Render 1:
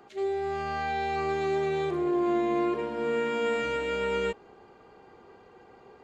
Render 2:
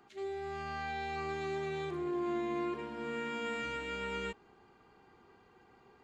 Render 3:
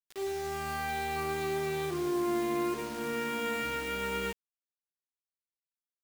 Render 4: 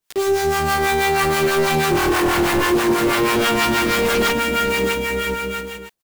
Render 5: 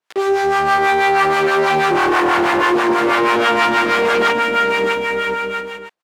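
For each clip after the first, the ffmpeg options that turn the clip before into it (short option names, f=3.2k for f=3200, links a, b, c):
-af "equalizer=f=540:w=1.6:g=-9.5,volume=-5.5dB"
-af "acrusher=bits=7:mix=0:aa=0.000001,volume=4.5dB"
-filter_complex "[0:a]aecho=1:1:620|1023|1285|1455|1566:0.631|0.398|0.251|0.158|0.1,aeval=exprs='0.141*sin(PI/2*3.98*val(0)/0.141)':c=same,acrossover=split=700[a][b];[a]aeval=exprs='val(0)*(1-0.7/2+0.7/2*cos(2*PI*6.2*n/s))':c=same[c];[b]aeval=exprs='val(0)*(1-0.7/2-0.7/2*cos(2*PI*6.2*n/s))':c=same[d];[c][d]amix=inputs=2:normalize=0,volume=6dB"
-af "bandpass=f=1k:t=q:w=0.62:csg=0,volume=6dB"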